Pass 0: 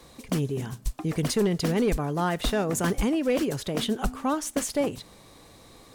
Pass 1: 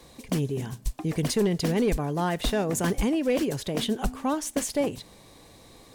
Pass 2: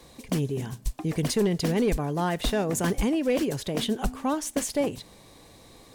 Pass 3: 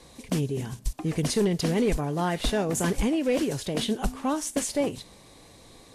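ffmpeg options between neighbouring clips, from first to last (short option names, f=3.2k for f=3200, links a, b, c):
-af "equalizer=f=1.3k:t=o:w=0.33:g=-5.5"
-af anull
-ar 32000 -c:a libvorbis -b:a 32k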